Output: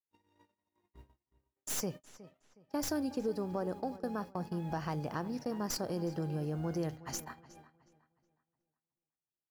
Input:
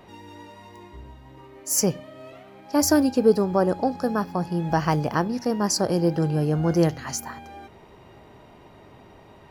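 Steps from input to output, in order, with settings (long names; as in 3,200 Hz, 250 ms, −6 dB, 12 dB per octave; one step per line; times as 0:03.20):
stylus tracing distortion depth 0.055 ms
in parallel at 0 dB: brickwall limiter −15 dBFS, peak gain reduction 8.5 dB
on the sum: downward compressor 2 to 1, threshold −35 dBFS, peak gain reduction 14 dB
bit reduction 10 bits
noise gate −34 dBFS, range −59 dB
on a send: feedback echo with a low-pass in the loop 366 ms, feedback 33%, low-pass 4,500 Hz, level −17 dB
on the sum: level −7.5 dB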